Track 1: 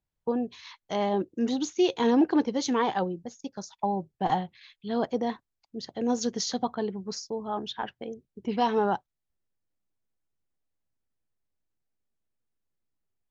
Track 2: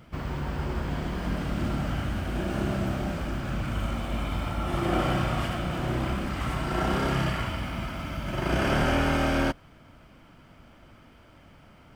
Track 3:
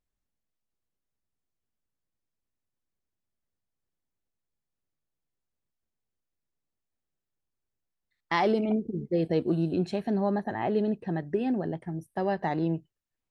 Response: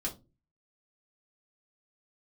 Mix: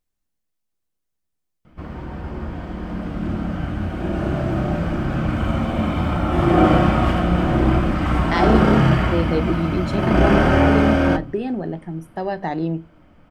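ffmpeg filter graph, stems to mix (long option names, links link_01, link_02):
-filter_complex "[1:a]lowpass=frequency=1300:poles=1,dynaudnorm=framelen=270:gausssize=21:maxgain=11.5dB,adelay=1650,volume=-2.5dB,asplit=2[link_01][link_02];[link_02]volume=-4.5dB[link_03];[2:a]volume=2dB,asplit=2[link_04][link_05];[link_05]volume=-12.5dB[link_06];[3:a]atrim=start_sample=2205[link_07];[link_03][link_06]amix=inputs=2:normalize=0[link_08];[link_08][link_07]afir=irnorm=-1:irlink=0[link_09];[link_01][link_04][link_09]amix=inputs=3:normalize=0,highshelf=frequency=5100:gain=4"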